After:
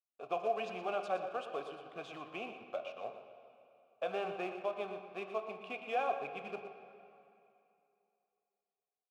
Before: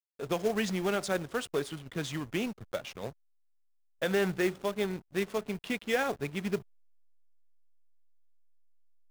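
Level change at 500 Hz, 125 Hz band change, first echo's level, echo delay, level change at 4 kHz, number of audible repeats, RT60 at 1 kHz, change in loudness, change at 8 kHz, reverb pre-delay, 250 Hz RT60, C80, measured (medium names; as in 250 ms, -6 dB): -6.0 dB, -20.0 dB, -11.0 dB, 119 ms, -11.5 dB, 1, 2.8 s, -7.0 dB, under -20 dB, 13 ms, 2.7 s, 7.0 dB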